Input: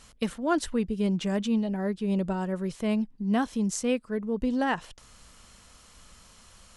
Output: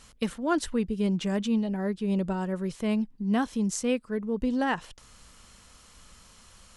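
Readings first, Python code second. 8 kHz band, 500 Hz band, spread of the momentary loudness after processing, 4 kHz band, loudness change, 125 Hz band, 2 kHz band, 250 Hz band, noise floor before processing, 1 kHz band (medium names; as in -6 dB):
0.0 dB, -0.5 dB, 4 LU, 0.0 dB, 0.0 dB, 0.0 dB, 0.0 dB, 0.0 dB, -55 dBFS, -0.5 dB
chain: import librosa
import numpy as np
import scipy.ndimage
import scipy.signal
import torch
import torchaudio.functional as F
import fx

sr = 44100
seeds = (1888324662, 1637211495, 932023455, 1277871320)

y = fx.peak_eq(x, sr, hz=660.0, db=-2.5, octaves=0.32)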